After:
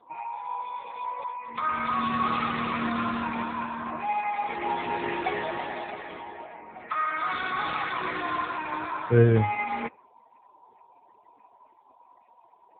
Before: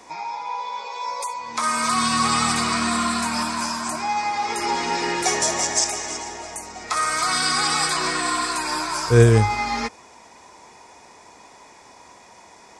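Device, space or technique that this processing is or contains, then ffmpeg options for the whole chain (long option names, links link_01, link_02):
mobile call with aggressive noise cancelling: -filter_complex "[0:a]asettb=1/sr,asplit=3[link_01][link_02][link_03];[link_01]atrim=end=1.314[link_04];[link_02]atrim=start=1.31:end=2.23,asetpts=PTS-STARTPTS,afade=type=in:duration=0.004:curve=qsin,afade=type=out:start_time=0.916:duration=0.004:curve=qsin,highshelf=frequency=8900:gain=-3[link_05];[link_03]atrim=start=2.226[link_06];[link_04][link_05]acrossfade=duration=0.004:curve1=hsin:curve2=qsin[link_07];[link_07][link_06]acrossfade=duration=0.004:curve1=qsin:curve2=hsin,highpass=100,afftdn=noise_reduction=31:noise_floor=-42,volume=-4dB" -ar 8000 -c:a libopencore_amrnb -b:a 7950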